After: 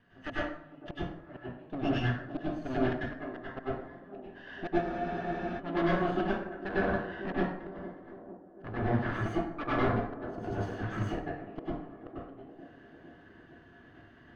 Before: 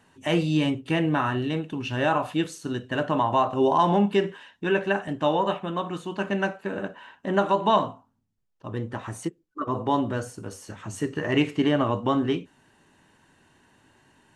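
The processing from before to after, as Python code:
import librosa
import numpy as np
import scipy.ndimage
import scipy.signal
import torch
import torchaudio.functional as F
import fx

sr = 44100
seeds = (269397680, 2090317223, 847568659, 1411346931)

p1 = fx.lower_of_two(x, sr, delay_ms=0.63)
p2 = fx.dynamic_eq(p1, sr, hz=610.0, q=4.3, threshold_db=-45.0, ratio=4.0, max_db=5)
p3 = fx.level_steps(p2, sr, step_db=15)
p4 = p2 + F.gain(torch.from_numpy(p3), -2.0).numpy()
p5 = fx.gate_flip(p4, sr, shuts_db=-14.0, range_db=-37)
p6 = fx.small_body(p5, sr, hz=(700.0, 1700.0), ring_ms=45, db=9)
p7 = np.clip(10.0 ** (26.0 / 20.0) * p6, -1.0, 1.0) / 10.0 ** (26.0 / 20.0)
p8 = fx.air_absorb(p7, sr, metres=280.0)
p9 = fx.echo_wet_bandpass(p8, sr, ms=453, feedback_pct=65, hz=400.0, wet_db=-12.5)
p10 = fx.rev_plate(p9, sr, seeds[0], rt60_s=0.68, hf_ratio=0.6, predelay_ms=85, drr_db=-8.0)
p11 = fx.spec_freeze(p10, sr, seeds[1], at_s=4.83, hold_s=0.76)
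y = F.gain(torch.from_numpy(p11), -6.0).numpy()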